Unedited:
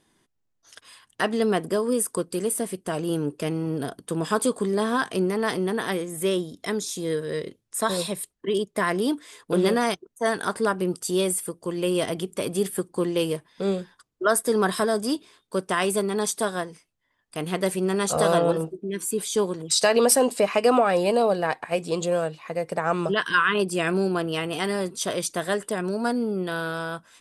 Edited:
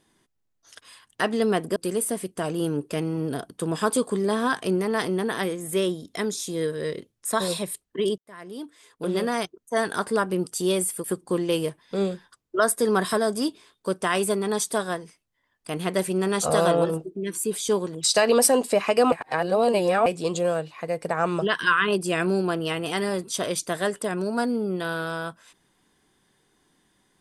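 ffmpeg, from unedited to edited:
ffmpeg -i in.wav -filter_complex "[0:a]asplit=6[link_01][link_02][link_03][link_04][link_05][link_06];[link_01]atrim=end=1.762[link_07];[link_02]atrim=start=2.248:end=8.67,asetpts=PTS-STARTPTS,afade=type=out:start_time=6.418:duration=0.004:curve=hsin[link_08];[link_03]atrim=start=8.67:end=11.532,asetpts=PTS-STARTPTS,afade=type=in:duration=1.64[link_09];[link_04]atrim=start=12.708:end=20.792[link_10];[link_05]atrim=start=20.788:end=21.732,asetpts=PTS-STARTPTS,areverse[link_11];[link_06]atrim=start=21.728[link_12];[link_08][link_09]concat=n=2:v=0:a=1[link_13];[link_07][link_13]acrossfade=duration=0.004:curve1=hsin:curve2=hsin[link_14];[link_14][link_10]acrossfade=duration=0.004:curve1=hsin:curve2=hsin[link_15];[link_15][link_11]acrossfade=duration=0.004:curve1=hsin:curve2=hsin[link_16];[link_16][link_12]acrossfade=duration=0.004:curve1=hsin:curve2=hsin" out.wav

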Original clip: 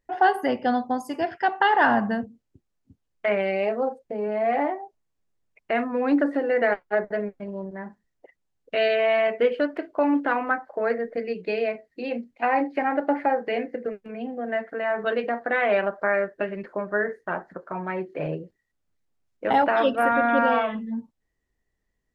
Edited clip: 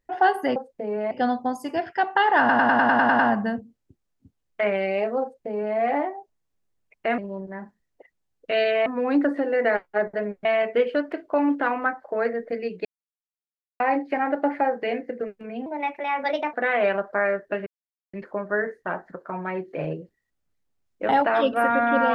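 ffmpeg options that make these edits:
ffmpeg -i in.wav -filter_complex "[0:a]asplit=19[link_01][link_02][link_03][link_04][link_05][link_06][link_07][link_08][link_09][link_10][link_11][link_12][link_13][link_14][link_15][link_16][link_17][link_18][link_19];[link_01]atrim=end=0.562[link_20];[link_02]atrim=start=3.868:end=4.422[link_21];[link_03]atrim=start=0.558:end=1.942[link_22];[link_04]atrim=start=1.838:end=1.942[link_23];[link_05]atrim=start=1.838:end=1.942[link_24];[link_06]atrim=start=1.838:end=1.942[link_25];[link_07]atrim=start=1.838:end=1.942[link_26];[link_08]atrim=start=1.838:end=1.942[link_27];[link_09]atrim=start=1.838:end=1.942[link_28];[link_10]atrim=start=1.838:end=1.942[link_29];[link_11]atrim=start=1.838:end=5.832[link_30];[link_12]atrim=start=7.418:end=9.102[link_31];[link_13]atrim=start=5.828:end=7.422[link_32];[link_14]atrim=start=9.098:end=11.5,asetpts=PTS-STARTPTS,afade=type=out:start_time=2.398:duration=0.004:curve=hsin[link_33];[link_15]atrim=start=11.5:end=12.45,asetpts=PTS-STARTPTS,volume=0[link_34];[link_16]atrim=start=12.45:end=14.314,asetpts=PTS-STARTPTS,afade=type=in:duration=0.004:curve=hsin[link_35];[link_17]atrim=start=14.31:end=15.42,asetpts=PTS-STARTPTS,asetrate=56007,aresample=44100,atrim=end_sample=38544,asetpts=PTS-STARTPTS[link_36];[link_18]atrim=start=15.416:end=16.55,asetpts=PTS-STARTPTS,afade=type=out:start_time=1.13:duration=0.004:curve=hsin,apad=pad_dur=0.47[link_37];[link_19]atrim=start=16.55,asetpts=PTS-STARTPTS,afade=type=in:duration=0.004:curve=hsin[link_38];[link_20][link_21]acrossfade=duration=0.004:curve1=hsin:curve2=hsin[link_39];[link_39][link_22]acrossfade=duration=0.004:curve1=hsin:curve2=hsin[link_40];[link_40][link_23]acrossfade=duration=0.004:curve1=hsin:curve2=hsin[link_41];[link_41][link_24]acrossfade=duration=0.004:curve1=hsin:curve2=hsin[link_42];[link_42][link_25]acrossfade=duration=0.004:curve1=hsin:curve2=hsin[link_43];[link_43][link_26]acrossfade=duration=0.004:curve1=hsin:curve2=hsin[link_44];[link_44][link_27]acrossfade=duration=0.004:curve1=hsin:curve2=hsin[link_45];[link_45][link_28]acrossfade=duration=0.004:curve1=hsin:curve2=hsin[link_46];[link_46][link_29]acrossfade=duration=0.004:curve1=hsin:curve2=hsin[link_47];[link_47][link_30]acrossfade=duration=0.004:curve1=hsin:curve2=hsin[link_48];[link_48][link_31]acrossfade=duration=0.004:curve1=hsin:curve2=hsin[link_49];[link_49][link_32]acrossfade=duration=0.004:curve1=hsin:curve2=hsin[link_50];[link_33][link_34][link_35]concat=n=3:v=0:a=1[link_51];[link_50][link_51]acrossfade=duration=0.004:curve1=hsin:curve2=hsin[link_52];[link_52][link_36]acrossfade=duration=0.004:curve1=hsin:curve2=hsin[link_53];[link_37][link_38]concat=n=2:v=0:a=1[link_54];[link_53][link_54]acrossfade=duration=0.004:curve1=hsin:curve2=hsin" out.wav

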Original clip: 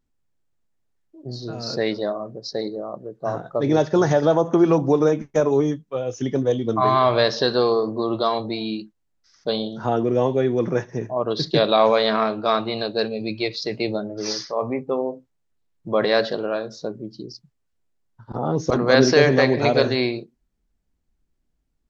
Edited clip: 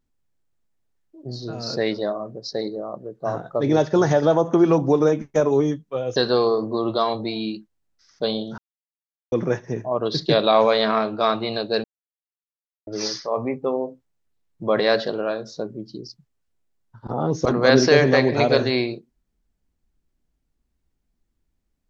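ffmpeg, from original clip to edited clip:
ffmpeg -i in.wav -filter_complex "[0:a]asplit=6[link_01][link_02][link_03][link_04][link_05][link_06];[link_01]atrim=end=6.162[link_07];[link_02]atrim=start=7.408:end=9.83,asetpts=PTS-STARTPTS,afade=type=out:start_time=2.418:duration=0.004:curve=hsin[link_08];[link_03]atrim=start=9.83:end=10.57,asetpts=PTS-STARTPTS,volume=0[link_09];[link_04]atrim=start=10.57:end=13.09,asetpts=PTS-STARTPTS,afade=type=in:duration=0.004:curve=hsin,afade=type=out:start_time=2.516:duration=0.004:curve=hsin[link_10];[link_05]atrim=start=13.09:end=14.12,asetpts=PTS-STARTPTS,volume=0[link_11];[link_06]atrim=start=14.12,asetpts=PTS-STARTPTS,afade=type=in:duration=0.004:curve=hsin[link_12];[link_08][link_09][link_10][link_11][link_12]concat=n=5:v=0:a=1[link_13];[link_07][link_13]acrossfade=duration=0.004:curve1=hsin:curve2=hsin" out.wav

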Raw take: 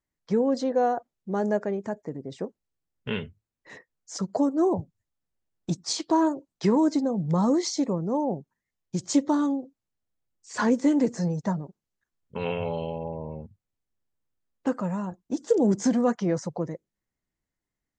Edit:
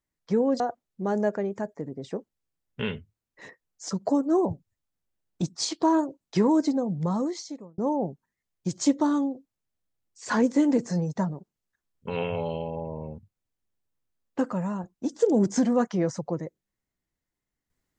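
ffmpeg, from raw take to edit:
ffmpeg -i in.wav -filter_complex "[0:a]asplit=3[link_01][link_02][link_03];[link_01]atrim=end=0.602[link_04];[link_02]atrim=start=0.878:end=8.06,asetpts=PTS-STARTPTS,afade=type=out:start_time=6.162:duration=1.02[link_05];[link_03]atrim=start=8.06,asetpts=PTS-STARTPTS,afade=type=in:duration=0.004:curve=hsin[link_06];[link_05][link_06]concat=n=2:v=0:a=1[link_07];[link_04][link_07]acrossfade=duration=0.004:curve1=hsin:curve2=hsin" out.wav

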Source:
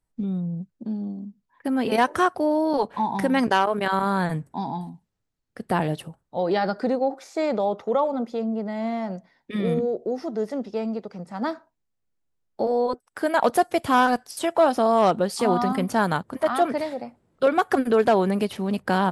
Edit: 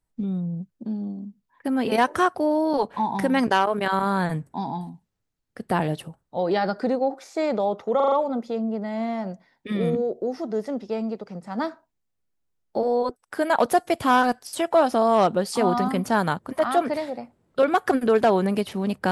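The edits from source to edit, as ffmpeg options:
ffmpeg -i in.wav -filter_complex "[0:a]asplit=5[link_01][link_02][link_03][link_04][link_05];[link_01]atrim=end=8.002[link_06];[link_02]atrim=start=7.958:end=8.002[link_07];[link_03]atrim=start=7.958:end=8.002[link_08];[link_04]atrim=start=7.958:end=8.002[link_09];[link_05]atrim=start=7.958[link_10];[link_06][link_07]acrossfade=duration=0.004:curve1=hsin:curve2=hsin[link_11];[link_11][link_08]acrossfade=duration=0.004:curve1=hsin:curve2=hsin[link_12];[link_12][link_09]acrossfade=duration=0.004:curve1=hsin:curve2=hsin[link_13];[link_13][link_10]acrossfade=duration=0.004:curve1=hsin:curve2=hsin" out.wav

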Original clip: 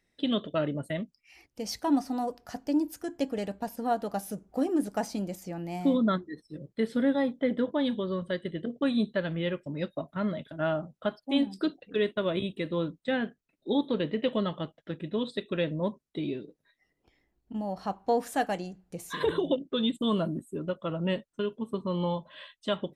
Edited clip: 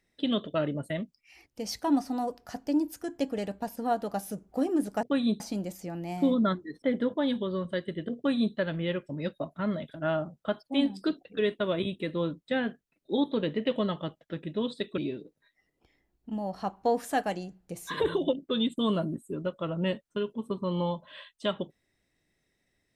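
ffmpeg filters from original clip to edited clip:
ffmpeg -i in.wav -filter_complex "[0:a]asplit=5[link_01][link_02][link_03][link_04][link_05];[link_01]atrim=end=5.032[link_06];[link_02]atrim=start=8.738:end=9.112[link_07];[link_03]atrim=start=5.028:end=6.452[link_08];[link_04]atrim=start=7.388:end=15.552[link_09];[link_05]atrim=start=16.208[link_10];[link_06][link_07]acrossfade=duration=0.004:curve1=hsin:curve2=hsin[link_11];[link_11][link_08]acrossfade=duration=0.004:curve1=hsin:curve2=hsin[link_12];[link_12][link_09]acrossfade=duration=0.004:curve1=hsin:curve2=hsin[link_13];[link_13][link_10]acrossfade=duration=0.004:curve1=hsin:curve2=hsin" out.wav

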